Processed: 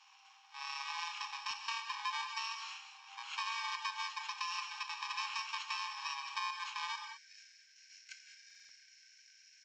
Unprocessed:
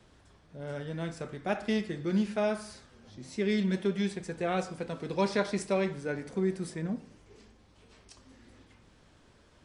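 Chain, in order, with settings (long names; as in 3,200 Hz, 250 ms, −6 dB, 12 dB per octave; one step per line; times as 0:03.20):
samples in bit-reversed order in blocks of 64 samples
Chebyshev high-pass with heavy ripple 760 Hz, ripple 9 dB, from 0:06.95 1,500 Hz
hard clipping −24.5 dBFS, distortion −40 dB
downsampling to 16,000 Hz
downward compressor 6 to 1, threshold −49 dBFS, peak gain reduction 12 dB
high-shelf EQ 5,000 Hz −9 dB
reverb whose tail is shaped and stops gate 230 ms rising, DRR 7 dB
buffer that repeats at 0:08.46, samples 2,048, times 4
level +14 dB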